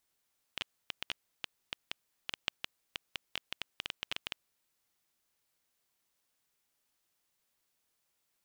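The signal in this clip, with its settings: random clicks 6.9 per s -17 dBFS 4.30 s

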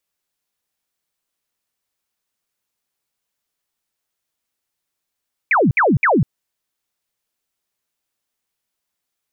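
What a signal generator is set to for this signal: burst of laser zaps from 2.5 kHz, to 110 Hz, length 0.20 s sine, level -11 dB, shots 3, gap 0.06 s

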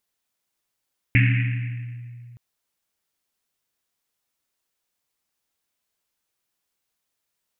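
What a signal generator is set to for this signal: Risset drum length 1.22 s, pitch 120 Hz, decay 2.74 s, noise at 2.2 kHz, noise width 930 Hz, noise 25%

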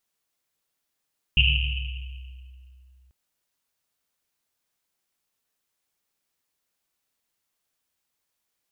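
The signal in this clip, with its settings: Risset drum length 1.74 s, pitch 64 Hz, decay 2.93 s, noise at 2.8 kHz, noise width 520 Hz, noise 40%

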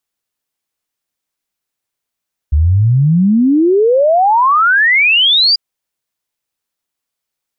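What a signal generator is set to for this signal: log sweep 70 Hz -> 4.9 kHz 3.04 s -7 dBFS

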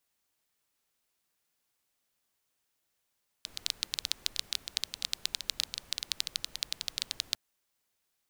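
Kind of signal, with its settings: rain from filtered ticks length 3.90 s, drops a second 12, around 4 kHz, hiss -19 dB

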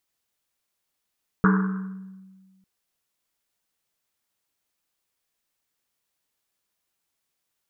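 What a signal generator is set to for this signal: Risset drum length 1.20 s, pitch 190 Hz, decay 1.65 s, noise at 1.3 kHz, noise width 610 Hz, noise 25%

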